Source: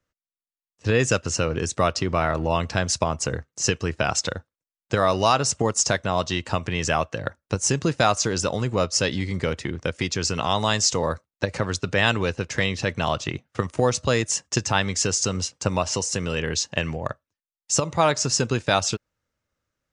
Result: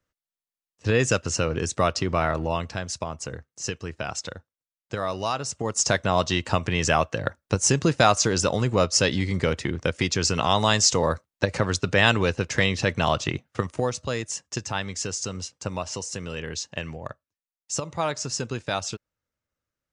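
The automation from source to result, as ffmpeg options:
-af "volume=8.5dB,afade=t=out:st=2.28:d=0.53:silence=0.446684,afade=t=in:st=5.59:d=0.41:silence=0.334965,afade=t=out:st=13.34:d=0.61:silence=0.375837"

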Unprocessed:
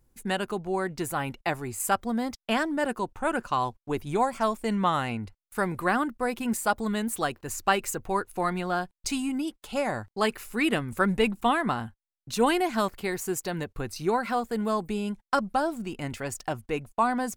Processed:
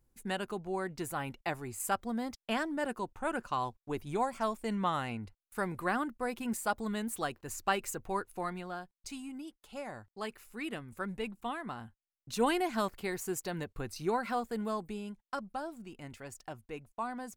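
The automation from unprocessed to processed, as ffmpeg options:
-af "volume=1dB,afade=t=out:st=8.18:d=0.62:silence=0.446684,afade=t=in:st=11.69:d=0.73:silence=0.398107,afade=t=out:st=14.42:d=0.78:silence=0.446684"

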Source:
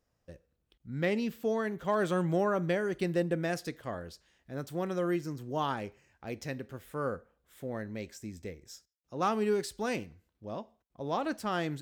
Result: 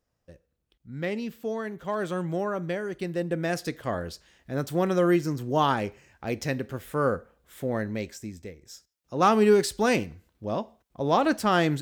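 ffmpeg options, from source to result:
-af "volume=19.5dB,afade=t=in:st=3.16:d=0.85:silence=0.334965,afade=t=out:st=7.84:d=0.69:silence=0.334965,afade=t=in:st=8.53:d=0.86:silence=0.298538"

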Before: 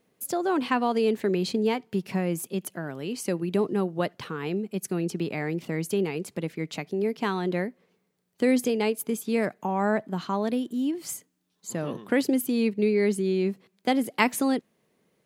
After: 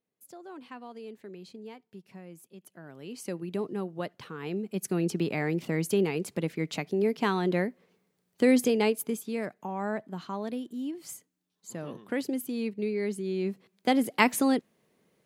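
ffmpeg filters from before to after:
-af "volume=8dB,afade=t=in:st=2.61:d=0.63:silence=0.251189,afade=t=in:st=4.3:d=0.74:silence=0.398107,afade=t=out:st=8.84:d=0.5:silence=0.398107,afade=t=in:st=13.22:d=0.77:silence=0.421697"

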